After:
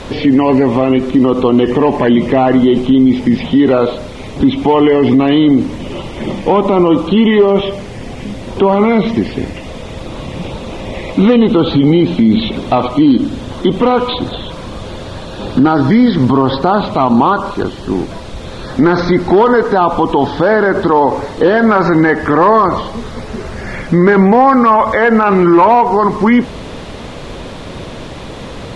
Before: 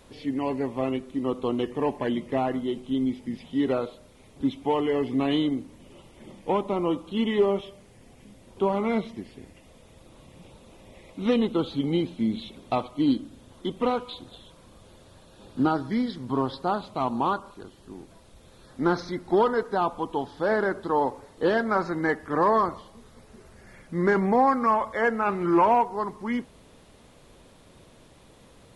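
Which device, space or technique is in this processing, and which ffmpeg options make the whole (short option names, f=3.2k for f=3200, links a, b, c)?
loud club master: -filter_complex "[0:a]acompressor=threshold=-28dB:ratio=1.5,asoftclip=type=hard:threshold=-18.5dB,alimiter=level_in=27.5dB:limit=-1dB:release=50:level=0:latency=1,lowpass=5.4k,acrossover=split=3200[a][b];[b]acompressor=threshold=-34dB:ratio=4:attack=1:release=60[c];[a][c]amix=inputs=2:normalize=0,volume=-1dB"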